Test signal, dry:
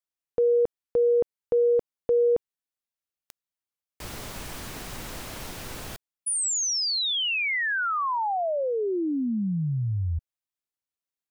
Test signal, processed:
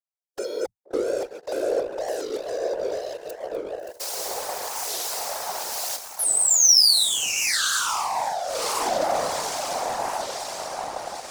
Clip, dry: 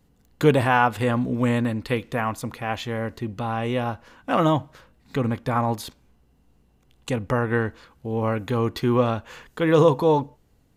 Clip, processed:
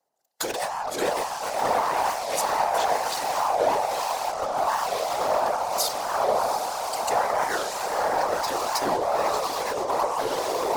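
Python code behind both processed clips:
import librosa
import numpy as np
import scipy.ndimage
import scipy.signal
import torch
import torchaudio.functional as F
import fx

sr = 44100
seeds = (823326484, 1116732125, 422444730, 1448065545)

p1 = fx.highpass_res(x, sr, hz=700.0, q=4.8)
p2 = fx.echo_pitch(p1, sr, ms=628, semitones=2, count=2, db_per_echo=-6.0)
p3 = fx.noise_reduce_blind(p2, sr, reduce_db=9)
p4 = p3 + fx.echo_diffused(p3, sr, ms=674, feedback_pct=62, wet_db=-7.0, dry=0)
p5 = fx.over_compress(p4, sr, threshold_db=-22.0, ratio=-1.0)
p6 = fx.fuzz(p5, sr, gain_db=31.0, gate_db=-38.0)
p7 = p5 + F.gain(torch.from_numpy(p6), -9.5).numpy()
p8 = fx.high_shelf_res(p7, sr, hz=3900.0, db=7.5, q=1.5)
p9 = fx.harmonic_tremolo(p8, sr, hz=1.1, depth_pct=50, crossover_hz=2100.0)
p10 = fx.whisperise(p9, sr, seeds[0])
p11 = fx.record_warp(p10, sr, rpm=45.0, depth_cents=250.0)
y = F.gain(torch.from_numpy(p11), -5.5).numpy()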